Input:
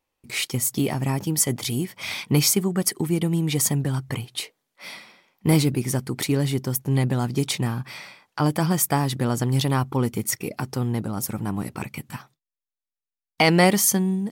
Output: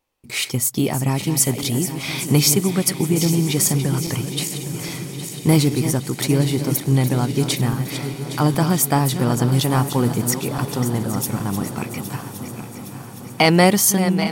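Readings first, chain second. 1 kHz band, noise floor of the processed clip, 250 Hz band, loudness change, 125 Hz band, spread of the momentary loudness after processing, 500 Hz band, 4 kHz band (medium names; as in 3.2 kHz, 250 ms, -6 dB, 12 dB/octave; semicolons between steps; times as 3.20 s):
+4.0 dB, -35 dBFS, +4.5 dB, +4.0 dB, +4.5 dB, 13 LU, +4.0 dB, +4.0 dB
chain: backward echo that repeats 407 ms, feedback 74%, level -10 dB; peaking EQ 1.9 kHz -2 dB; on a send: echo that smears into a reverb 1037 ms, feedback 59%, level -15.5 dB; on the sum: trim +3.5 dB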